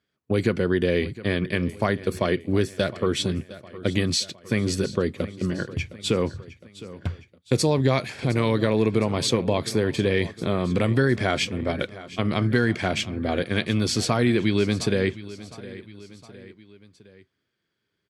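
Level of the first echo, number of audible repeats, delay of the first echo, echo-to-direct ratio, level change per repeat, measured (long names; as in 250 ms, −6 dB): −17.0 dB, 3, 711 ms, −15.5 dB, −5.5 dB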